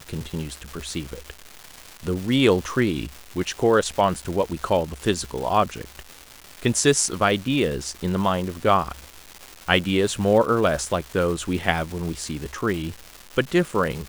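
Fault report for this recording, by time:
surface crackle 560 per second −30 dBFS

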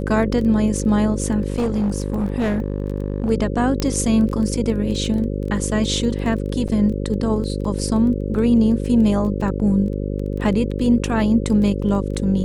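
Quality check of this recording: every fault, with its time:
mains buzz 50 Hz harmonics 11 −24 dBFS
surface crackle 12 per second −27 dBFS
0:01.50–0:03.30: clipping −16 dBFS
0:03.80: click −8 dBFS
0:06.68–0:06.69: drop-out 6.4 ms

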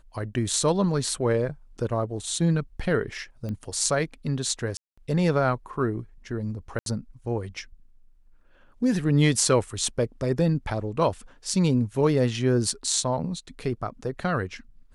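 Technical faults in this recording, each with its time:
0:03.49: click −23 dBFS
0:04.77–0:04.97: drop-out 205 ms
0:06.79–0:06.86: drop-out 72 ms

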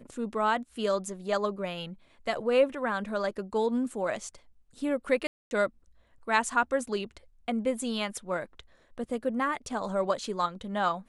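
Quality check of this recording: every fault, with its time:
0:05.27–0:05.51: drop-out 241 ms

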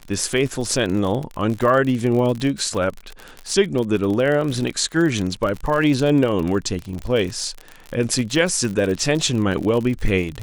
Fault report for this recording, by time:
surface crackle 48 per second −24 dBFS

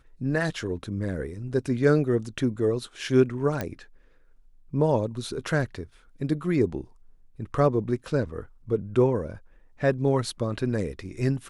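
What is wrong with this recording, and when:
0:03.61: click −14 dBFS

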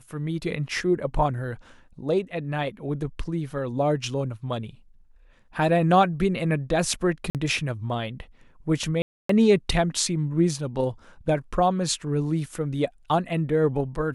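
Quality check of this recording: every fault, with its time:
0:07.30–0:07.35: drop-out 48 ms
0:09.02–0:09.29: drop-out 274 ms

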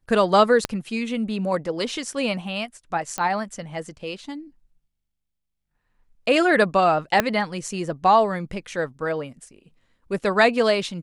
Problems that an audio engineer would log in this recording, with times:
0:00.65: click −7 dBFS
0:03.18: click −11 dBFS
0:07.20: click −4 dBFS

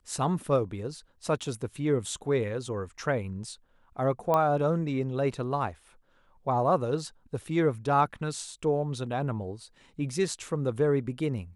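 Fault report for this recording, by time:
0:04.34: click −14 dBFS

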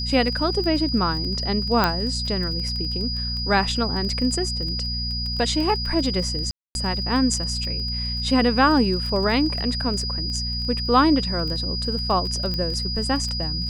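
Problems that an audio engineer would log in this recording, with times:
surface crackle 17 per second −28 dBFS
mains hum 60 Hz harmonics 4 −29 dBFS
whistle 4,900 Hz −27 dBFS
0:01.84: click −5 dBFS
0:06.51–0:06.75: drop-out 241 ms
0:12.54: click −15 dBFS

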